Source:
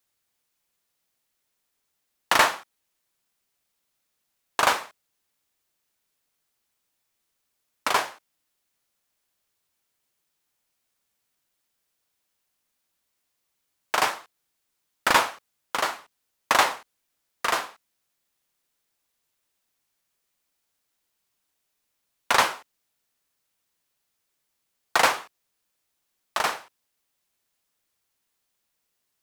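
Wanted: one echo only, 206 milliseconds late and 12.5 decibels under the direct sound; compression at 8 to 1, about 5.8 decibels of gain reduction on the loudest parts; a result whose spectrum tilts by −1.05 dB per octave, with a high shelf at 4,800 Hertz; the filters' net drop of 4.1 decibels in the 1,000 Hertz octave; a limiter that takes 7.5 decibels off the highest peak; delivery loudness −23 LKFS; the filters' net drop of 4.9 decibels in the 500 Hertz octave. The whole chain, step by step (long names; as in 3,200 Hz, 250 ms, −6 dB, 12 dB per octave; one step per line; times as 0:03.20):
parametric band 500 Hz −5 dB
parametric band 1,000 Hz −4 dB
high-shelf EQ 4,800 Hz +4 dB
downward compressor 8 to 1, threshold −22 dBFS
brickwall limiter −16 dBFS
single-tap delay 206 ms −12.5 dB
level +10.5 dB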